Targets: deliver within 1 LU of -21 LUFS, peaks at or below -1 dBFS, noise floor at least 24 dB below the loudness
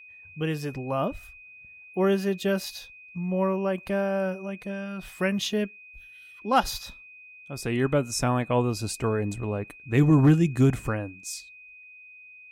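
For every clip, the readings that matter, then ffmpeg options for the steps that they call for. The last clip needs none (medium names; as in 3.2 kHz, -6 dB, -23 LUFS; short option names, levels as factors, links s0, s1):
steady tone 2.5 kHz; tone level -46 dBFS; loudness -26.5 LUFS; peak level -10.5 dBFS; loudness target -21.0 LUFS
-> -af "bandreject=f=2500:w=30"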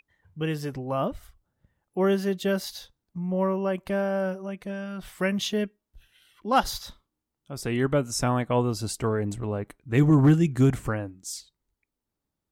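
steady tone not found; loudness -26.5 LUFS; peak level -10.5 dBFS; loudness target -21.0 LUFS
-> -af "volume=1.88"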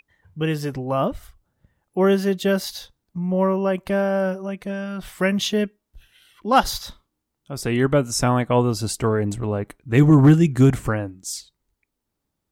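loudness -21.0 LUFS; peak level -5.0 dBFS; noise floor -80 dBFS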